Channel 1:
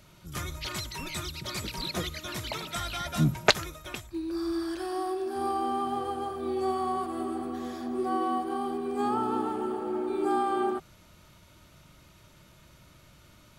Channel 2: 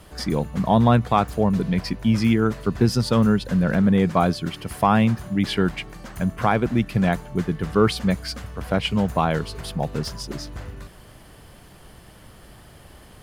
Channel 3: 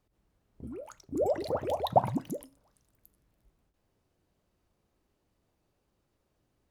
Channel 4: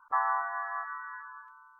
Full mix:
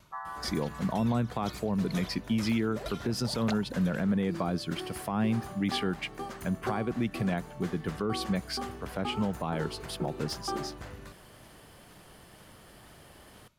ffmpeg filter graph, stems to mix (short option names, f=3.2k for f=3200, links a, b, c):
-filter_complex "[0:a]aeval=exprs='val(0)*pow(10,-30*if(lt(mod(2.1*n/s,1),2*abs(2.1)/1000),1-mod(2.1*n/s,1)/(2*abs(2.1)/1000),(mod(2.1*n/s,1)-2*abs(2.1)/1000)/(1-2*abs(2.1)/1000))/20)':c=same,volume=-2dB[a];[1:a]lowshelf=f=110:g=-10.5,acrossover=split=380[b][c];[c]acompressor=threshold=-24dB:ratio=6[d];[b][d]amix=inputs=2:normalize=0,adelay=250,volume=-4dB[e];[2:a]adelay=1550,volume=-13.5dB[f];[3:a]volume=-11.5dB[g];[a][e][f][g]amix=inputs=4:normalize=0,alimiter=limit=-20dB:level=0:latency=1:release=109"